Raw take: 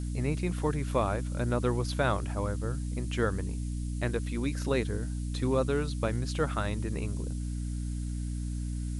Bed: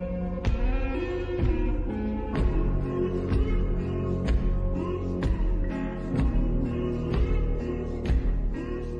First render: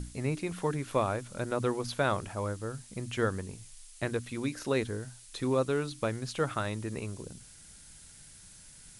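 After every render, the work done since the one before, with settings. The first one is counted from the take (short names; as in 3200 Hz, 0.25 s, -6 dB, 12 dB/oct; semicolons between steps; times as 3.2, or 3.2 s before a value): notches 60/120/180/240/300 Hz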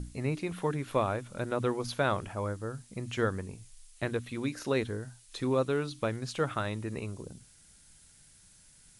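noise print and reduce 6 dB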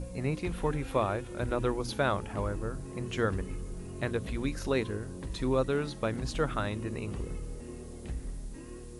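add bed -13 dB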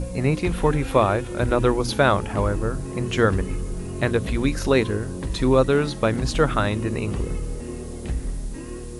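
gain +10.5 dB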